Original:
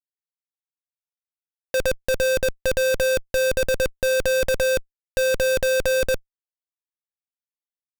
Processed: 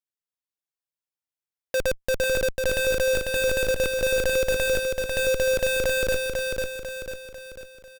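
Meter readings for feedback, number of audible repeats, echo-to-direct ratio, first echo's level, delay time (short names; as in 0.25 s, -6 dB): 47%, 5, -2.5 dB, -3.5 dB, 0.496 s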